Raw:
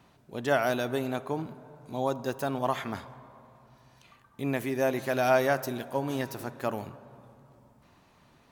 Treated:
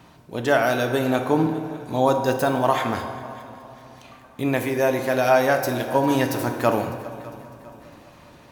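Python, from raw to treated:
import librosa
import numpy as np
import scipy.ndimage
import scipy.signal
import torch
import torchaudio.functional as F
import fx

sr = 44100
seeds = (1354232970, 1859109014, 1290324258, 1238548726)

y = fx.rider(x, sr, range_db=3, speed_s=0.5)
y = fx.echo_heads(y, sr, ms=201, heads='second and third', feedback_pct=48, wet_db=-21.0)
y = fx.rev_fdn(y, sr, rt60_s=1.5, lf_ratio=0.85, hf_ratio=0.65, size_ms=19.0, drr_db=5.5)
y = y * librosa.db_to_amplitude(7.5)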